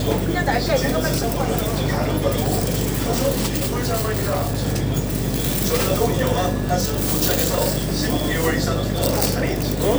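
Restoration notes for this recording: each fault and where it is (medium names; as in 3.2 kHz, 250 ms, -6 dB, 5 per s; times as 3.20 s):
buzz 50 Hz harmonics 9 -26 dBFS
3.54–4.68 s: clipped -17.5 dBFS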